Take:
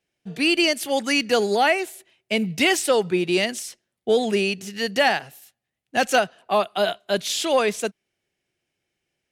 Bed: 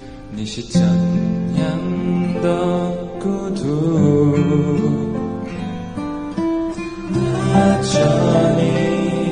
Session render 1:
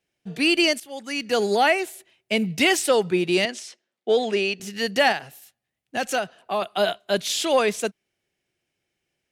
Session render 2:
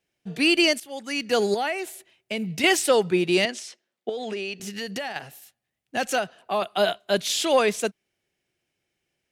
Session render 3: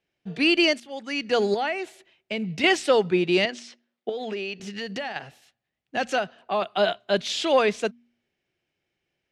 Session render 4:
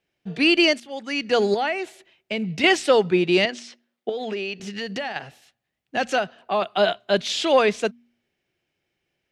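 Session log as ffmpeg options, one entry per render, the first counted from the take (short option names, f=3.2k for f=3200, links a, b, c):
-filter_complex "[0:a]asettb=1/sr,asplit=3[a][b][c];[a]atrim=end=3.454[d];[b]atrim=start=3.45:end=4.6,asetpts=PTS-STARTPTS,afade=t=in:d=0.004:c=qsin,afade=t=out:st=1.146:d=0.004:c=qsin,highpass=280,lowpass=5.9k[e];[c]atrim=start=4.596[f];[d][e]acrossfade=d=0.004:c1=hsin:c2=qsin[g];[g][f]acrossfade=d=0.004:c1=qsin:c2=hsin,asettb=1/sr,asplit=3[h][i][j];[h]atrim=end=5.124[k];[i]atrim=start=5.12:end=6.62,asetpts=PTS-STARTPTS,afade=t=in:d=0.004:c=qsin,afade=t=out:st=1.496:d=0.004:c=qsin,acompressor=threshold=-29dB:ratio=1.5:attack=3.2:release=140:knee=1:detection=peak[l];[j]atrim=start=6.616[m];[k][l]acrossfade=d=0.004:c1=hsin:c2=qsin[n];[n][m]acrossfade=d=0.004:c1=qsin:c2=hsin,asplit=2[o][p];[o]atrim=end=0.8,asetpts=PTS-STARTPTS,afade=t=out:st=0.796:d=0.004:c=hsin:silence=0.188365[q];[p]atrim=start=0.8,asetpts=PTS-STARTPTS,afade=t=in:d=0.66:c=qua:silence=0.188365[r];[q][r]concat=n=2:v=0:a=1"
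-filter_complex "[0:a]asettb=1/sr,asplit=3[a][b][c];[a]atrim=end=1.544[d];[b]atrim=start=1.54:end=2.64,asetpts=PTS-STARTPTS,afade=t=in:d=0.004:c=qsin,afade=t=out:st=1.096:d=0.004:c=qsin,acompressor=threshold=-29dB:ratio=2:attack=3.2:release=140:knee=1:detection=peak[e];[c]atrim=start=2.636[f];[d][e]acrossfade=d=0.004:c1=hsin:c2=qsin[g];[g][f]acrossfade=d=0.004:c1=qsin:c2=hsin,asettb=1/sr,asplit=3[h][i][j];[h]atrim=end=4.094[k];[i]atrim=start=4.09:end=5.16,asetpts=PTS-STARTPTS,afade=t=in:d=0.004:c=qsin,afade=t=out:st=1.066:d=0.004:c=qsin,acompressor=threshold=-27dB:ratio=10:attack=3.2:release=140:knee=1:detection=peak[l];[j]atrim=start=5.156[m];[k][l]acrossfade=d=0.004:c1=hsin:c2=qsin[n];[n][m]acrossfade=d=0.004:c1=qsin:c2=hsin"
-af "lowpass=4.6k,bandreject=f=119:t=h:w=4,bandreject=f=238:t=h:w=4"
-af "volume=2.5dB"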